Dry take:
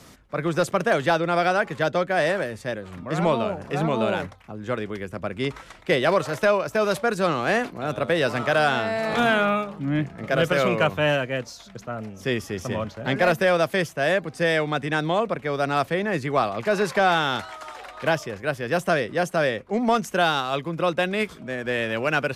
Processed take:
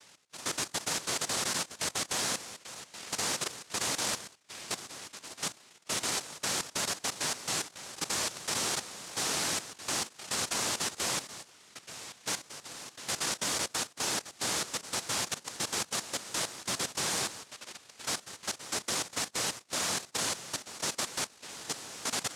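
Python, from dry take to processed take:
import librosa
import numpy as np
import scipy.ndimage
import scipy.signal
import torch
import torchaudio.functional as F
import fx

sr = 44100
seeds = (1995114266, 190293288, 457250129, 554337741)

y = fx.noise_vocoder(x, sr, seeds[0], bands=1)
y = fx.dynamic_eq(y, sr, hz=2600.0, q=0.81, threshold_db=-35.0, ratio=4.0, max_db=-5)
y = fx.level_steps(y, sr, step_db=13)
y = y * 10.0 ** (-5.5 / 20.0)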